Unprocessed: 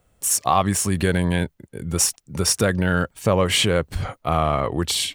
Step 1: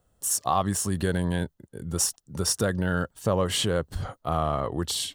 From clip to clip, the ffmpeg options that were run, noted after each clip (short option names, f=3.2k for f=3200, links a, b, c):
-af "equalizer=f=2.3k:w=3.9:g=-12.5,volume=-5.5dB"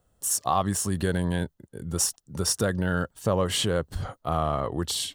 -af anull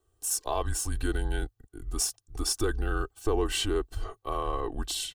-af "afreqshift=-120,aecho=1:1:2.6:0.75,volume=-5.5dB"